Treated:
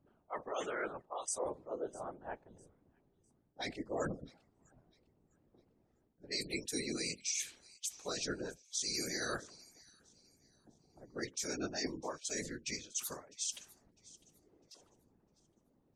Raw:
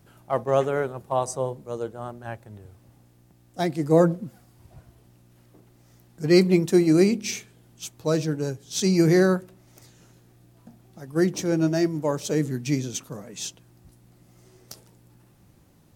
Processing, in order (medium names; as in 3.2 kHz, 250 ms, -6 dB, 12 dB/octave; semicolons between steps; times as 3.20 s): low-pass 11 kHz 12 dB/octave; differentiator; spectral gate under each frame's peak -20 dB strong; level-controlled noise filter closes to 370 Hz, open at -35 dBFS; dynamic bell 860 Hz, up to -3 dB, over -58 dBFS, Q 1.2; reverse; compression 6:1, threshold -51 dBFS, peak gain reduction 22 dB; reverse; peak limiter -44 dBFS, peak gain reduction 7.5 dB; whisper effect; on a send: feedback echo behind a high-pass 653 ms, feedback 32%, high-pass 2.9 kHz, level -19.5 dB; on the sum: trim +16.5 dB